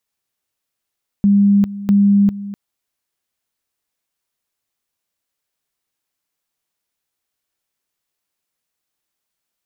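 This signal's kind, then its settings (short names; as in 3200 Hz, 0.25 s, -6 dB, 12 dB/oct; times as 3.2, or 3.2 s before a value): two-level tone 201 Hz -8.5 dBFS, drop 16 dB, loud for 0.40 s, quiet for 0.25 s, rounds 2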